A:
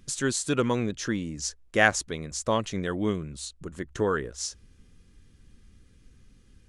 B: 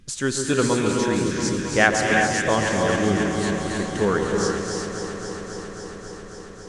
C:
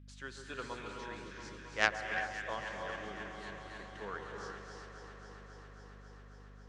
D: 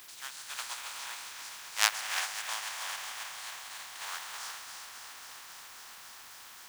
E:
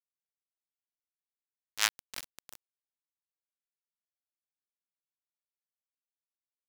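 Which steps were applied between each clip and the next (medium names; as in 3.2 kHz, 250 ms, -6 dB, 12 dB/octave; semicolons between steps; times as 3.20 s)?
treble shelf 9.8 kHz -6.5 dB; echo whose repeats swap between lows and highs 136 ms, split 1.3 kHz, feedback 90%, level -7 dB; gated-style reverb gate 400 ms rising, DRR 2 dB; trim +3 dB
three-band isolator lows -14 dB, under 590 Hz, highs -19 dB, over 4.3 kHz; Chebyshev shaper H 3 -13 dB, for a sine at -2 dBFS; hum 50 Hz, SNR 12 dB; trim -6.5 dB
spectral contrast reduction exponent 0.31; Chebyshev high-pass 850 Hz, order 3; in parallel at -10 dB: word length cut 8-bit, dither triangular; on the sum: trim +2 dB
small samples zeroed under -23 dBFS; trim -2 dB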